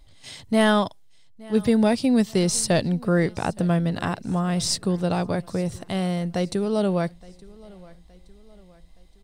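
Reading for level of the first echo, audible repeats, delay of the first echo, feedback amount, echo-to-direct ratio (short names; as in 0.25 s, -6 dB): -23.0 dB, 2, 0.869 s, 45%, -22.0 dB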